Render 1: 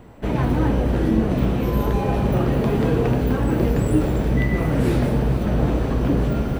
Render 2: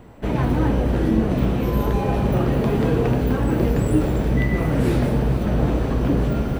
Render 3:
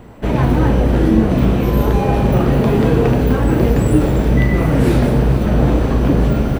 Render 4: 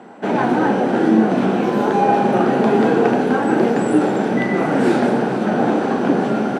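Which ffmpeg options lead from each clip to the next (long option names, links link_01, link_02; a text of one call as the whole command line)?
ffmpeg -i in.wav -af anull out.wav
ffmpeg -i in.wav -filter_complex "[0:a]asplit=2[link_01][link_02];[link_02]adelay=37,volume=-10.5dB[link_03];[link_01][link_03]amix=inputs=2:normalize=0,volume=5.5dB" out.wav
ffmpeg -i in.wav -af "highpass=frequency=200:width=0.5412,highpass=frequency=200:width=1.3066,equalizer=frequency=210:width_type=q:width=4:gain=4,equalizer=frequency=380:width_type=q:width=4:gain=4,equalizer=frequency=780:width_type=q:width=4:gain=10,equalizer=frequency=1500:width_type=q:width=4:gain=8,lowpass=frequency=9100:width=0.5412,lowpass=frequency=9100:width=1.3066,volume=-2dB" out.wav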